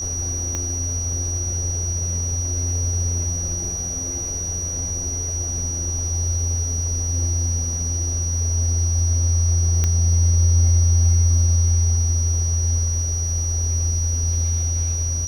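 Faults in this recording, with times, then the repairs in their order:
whine 5.8 kHz -25 dBFS
0.55 s: pop -12 dBFS
9.84 s: pop -8 dBFS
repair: de-click; band-stop 5.8 kHz, Q 30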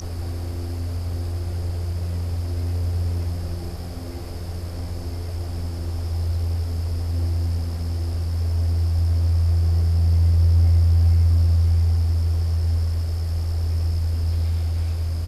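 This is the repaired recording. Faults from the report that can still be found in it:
0.55 s: pop

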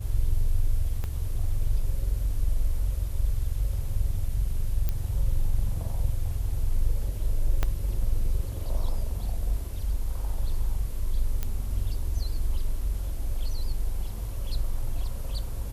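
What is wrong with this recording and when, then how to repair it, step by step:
1.04 s: pop -20 dBFS
4.89 s: pop -15 dBFS
7.63 s: pop -12 dBFS
11.43 s: pop -15 dBFS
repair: de-click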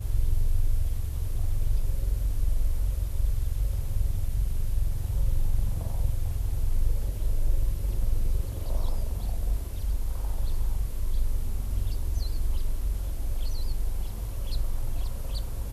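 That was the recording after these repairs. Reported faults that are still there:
1.04 s: pop
7.63 s: pop

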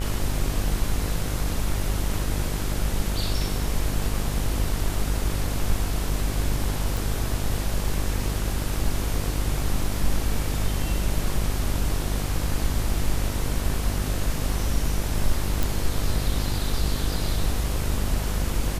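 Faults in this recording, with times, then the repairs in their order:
buzz 50 Hz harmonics 36 -28 dBFS
6.97 s: pop
15.63 s: pop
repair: de-click; de-hum 50 Hz, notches 36

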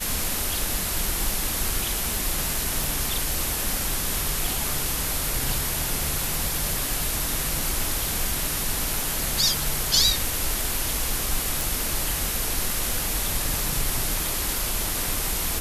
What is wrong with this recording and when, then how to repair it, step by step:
2.84 s: pop
11.61 s: pop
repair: de-click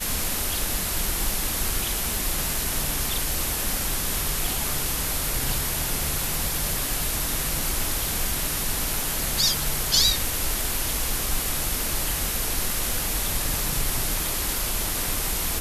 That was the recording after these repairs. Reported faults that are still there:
nothing left

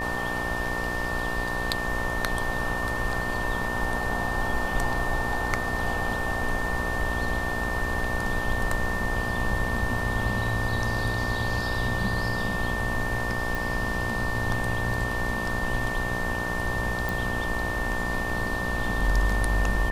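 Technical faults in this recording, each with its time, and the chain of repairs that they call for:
buzz 60 Hz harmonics 19 -33 dBFS
whine 1.8 kHz -30 dBFS
13.55 s: pop
17.09 s: pop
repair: de-click; de-hum 60 Hz, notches 19; band-stop 1.8 kHz, Q 30

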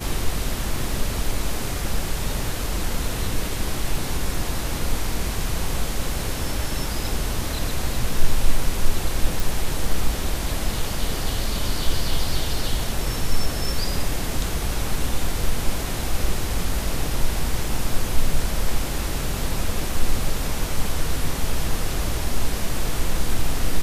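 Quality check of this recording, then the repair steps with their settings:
9.40 s: pop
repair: de-click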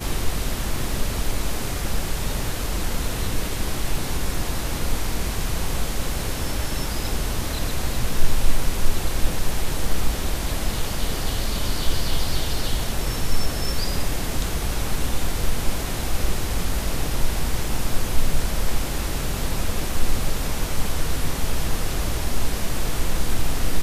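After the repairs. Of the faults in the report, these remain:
nothing left

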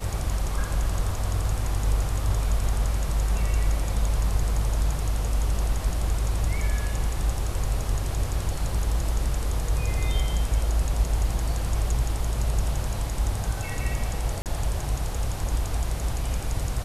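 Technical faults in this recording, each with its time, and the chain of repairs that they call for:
14.42–14.46 s: dropout 38 ms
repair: interpolate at 14.42 s, 38 ms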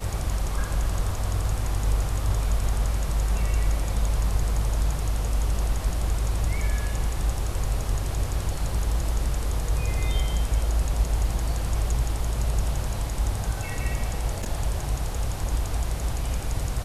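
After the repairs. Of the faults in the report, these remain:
nothing left

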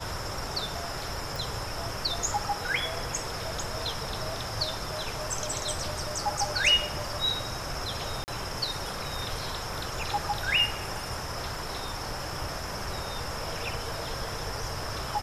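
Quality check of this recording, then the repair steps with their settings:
1.36 s: pop
8.24–8.28 s: dropout 39 ms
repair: de-click; interpolate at 8.24 s, 39 ms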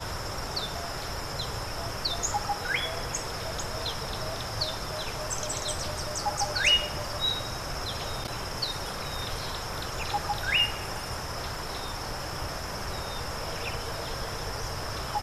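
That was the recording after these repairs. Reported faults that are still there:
nothing left

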